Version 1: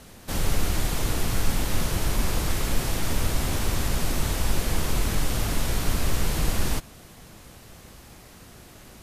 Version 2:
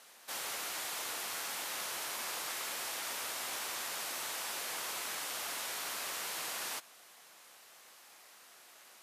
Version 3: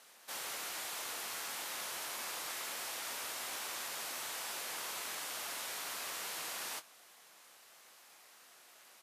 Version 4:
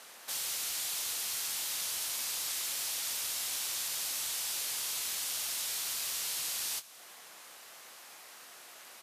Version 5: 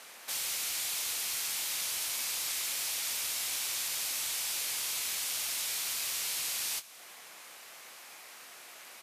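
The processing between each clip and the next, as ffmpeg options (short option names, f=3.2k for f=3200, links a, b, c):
-af "highpass=810,volume=-6dB"
-filter_complex "[0:a]asplit=2[a][b];[b]adelay=25,volume=-13dB[c];[a][c]amix=inputs=2:normalize=0,volume=-2.5dB"
-filter_complex "[0:a]acrossover=split=130|3000[a][b][c];[b]acompressor=threshold=-59dB:ratio=5[d];[a][d][c]amix=inputs=3:normalize=0,volume=8.5dB"
-af "equalizer=f=2.3k:t=o:w=0.44:g=4,volume=1dB"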